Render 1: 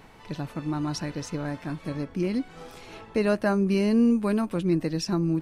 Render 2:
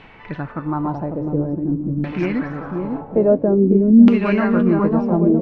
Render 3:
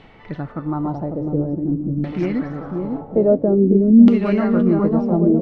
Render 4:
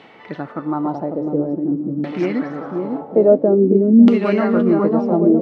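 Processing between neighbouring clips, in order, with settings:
short-mantissa float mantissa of 4-bit; on a send: bouncing-ball echo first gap 550 ms, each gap 0.75×, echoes 5; on the sum: LFO low-pass saw down 0.49 Hz 210–2900 Hz; trim +5 dB
graphic EQ with 31 bands 1 kHz -7 dB, 1.6 kHz -8 dB, 2.5 kHz -9 dB
high-pass 260 Hz 12 dB/octave; trim +4 dB

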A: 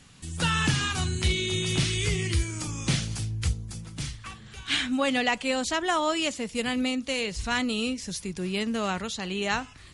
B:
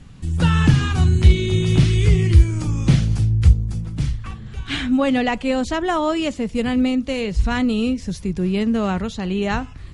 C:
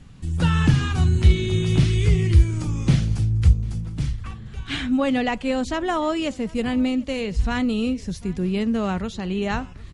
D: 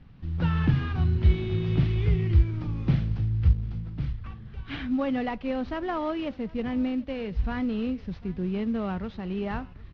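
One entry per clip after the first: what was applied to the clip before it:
tilt EQ -3 dB/octave; trim +4 dB
delay 748 ms -23.5 dB; trim -3 dB
CVSD coder 32 kbps; distance through air 300 m; trim -5 dB

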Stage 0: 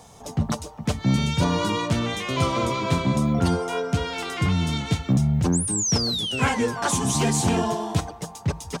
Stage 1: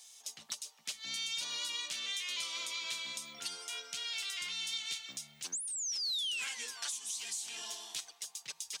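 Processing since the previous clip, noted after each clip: differentiator; compression 12:1, threshold -36 dBFS, peak gain reduction 13 dB; frequency weighting D; trim -7 dB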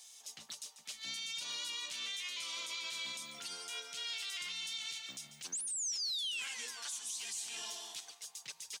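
peak limiter -32.5 dBFS, peak gain reduction 9 dB; delay 142 ms -12 dB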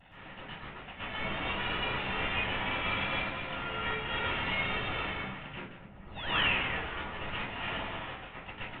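CVSD coder 16 kbps; vibrato 0.72 Hz 30 cents; reverberation RT60 0.35 s, pre-delay 116 ms, DRR -9 dB

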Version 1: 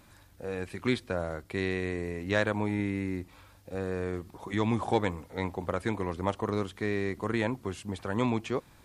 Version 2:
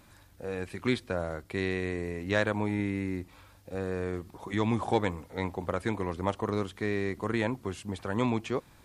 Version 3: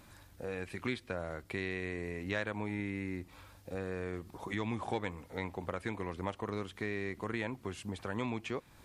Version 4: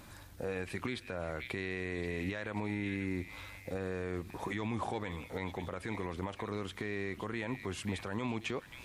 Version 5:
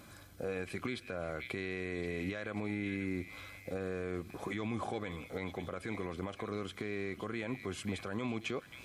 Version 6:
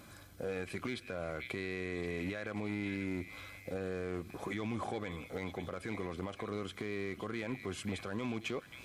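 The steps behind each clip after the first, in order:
no audible change
dynamic bell 2.3 kHz, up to +5 dB, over -49 dBFS, Q 1.2; compression 2:1, threshold -39 dBFS, peak gain reduction 11 dB
repeats whose band climbs or falls 535 ms, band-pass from 2.8 kHz, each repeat 0.7 oct, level -8 dB; peak limiter -30.5 dBFS, peak gain reduction 11 dB; trim +4.5 dB
comb of notches 910 Hz
overload inside the chain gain 30.5 dB

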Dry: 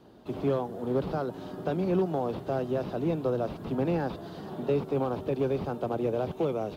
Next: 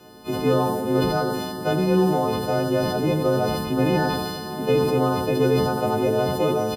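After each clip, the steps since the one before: partials quantised in pitch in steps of 3 st; on a send: delay 91 ms -8 dB; on the sum: decay stretcher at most 32 dB/s; trim +7 dB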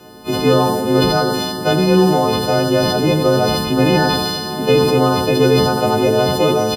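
dynamic bell 4.4 kHz, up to +7 dB, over -46 dBFS, Q 0.73; trim +6.5 dB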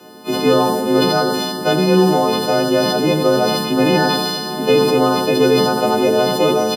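high-pass 160 Hz 24 dB/octave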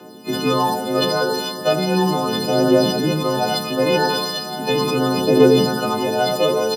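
phaser 0.37 Hz, delay 2.2 ms, feedback 54%; trim -4 dB

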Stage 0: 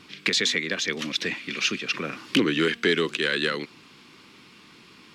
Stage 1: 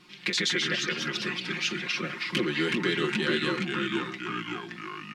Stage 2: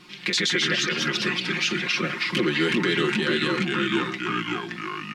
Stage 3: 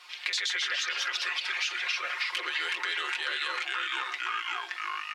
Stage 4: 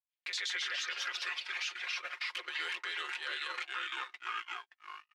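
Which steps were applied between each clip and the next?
ever faster or slower copies 85 ms, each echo -2 st, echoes 3; comb 5.6 ms, depth 78%; trim -7.5 dB
peak limiter -20 dBFS, peak gain reduction 6 dB; trim +6.5 dB
inverse Chebyshev high-pass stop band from 190 Hz, stop band 60 dB; compression 3:1, threshold -29 dBFS, peak gain reduction 7 dB
gate -31 dBFS, range -56 dB; peak limiter -25.5 dBFS, peak gain reduction 7 dB; trim -1.5 dB

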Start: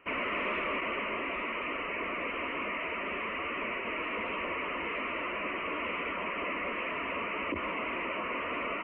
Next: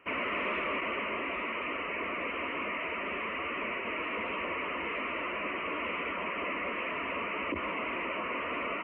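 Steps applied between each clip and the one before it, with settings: high-pass 44 Hz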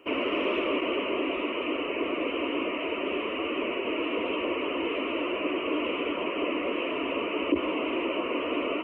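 FFT filter 210 Hz 0 dB, 300 Hz +14 dB, 2 kHz -6 dB, 3 kHz +9 dB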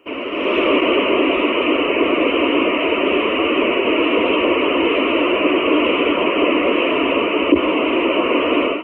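level rider gain up to 12 dB; trim +1.5 dB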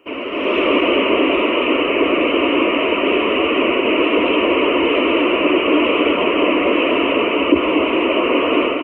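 delay 239 ms -7.5 dB

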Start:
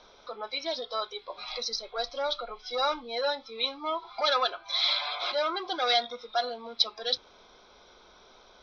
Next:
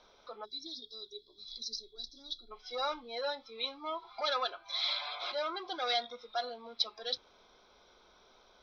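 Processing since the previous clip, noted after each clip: time-frequency box 0.45–2.51 s, 440–3300 Hz -28 dB; trim -7 dB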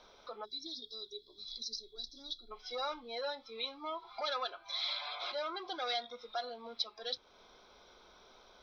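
compression 1.5:1, threshold -47 dBFS, peak gain reduction 8 dB; trim +2.5 dB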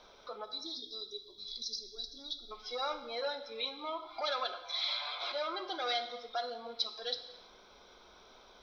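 gated-style reverb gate 370 ms falling, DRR 8 dB; trim +1.5 dB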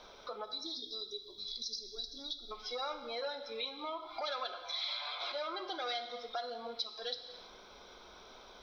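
compression 2:1, threshold -44 dBFS, peak gain reduction 9 dB; trim +3.5 dB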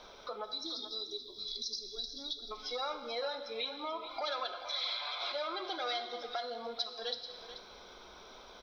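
delay 435 ms -12 dB; trim +1.5 dB

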